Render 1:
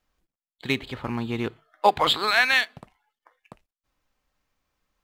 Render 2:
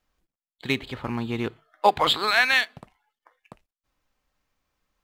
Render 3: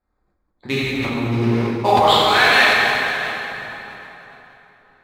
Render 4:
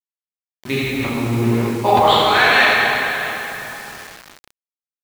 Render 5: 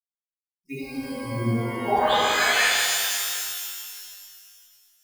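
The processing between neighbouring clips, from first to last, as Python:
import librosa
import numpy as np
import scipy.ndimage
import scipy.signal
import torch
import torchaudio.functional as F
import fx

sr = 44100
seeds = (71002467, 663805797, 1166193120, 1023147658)

y1 = x
y2 = fx.wiener(y1, sr, points=15)
y2 = fx.rev_plate(y2, sr, seeds[0], rt60_s=3.6, hf_ratio=0.75, predelay_ms=0, drr_db=-9.5)
y2 = fx.sustainer(y2, sr, db_per_s=26.0)
y2 = y2 * librosa.db_to_amplitude(-1.5)
y3 = fx.high_shelf(y2, sr, hz=6200.0, db=-8.0)
y3 = fx.notch(y3, sr, hz=5000.0, q=8.8)
y3 = fx.quant_dither(y3, sr, seeds[1], bits=6, dither='none')
y3 = y3 * librosa.db_to_amplitude(1.0)
y4 = fx.bin_expand(y3, sr, power=3.0)
y4 = fx.rev_shimmer(y4, sr, seeds[2], rt60_s=2.1, semitones=12, shimmer_db=-2, drr_db=-0.5)
y4 = y4 * librosa.db_to_amplitude(-6.5)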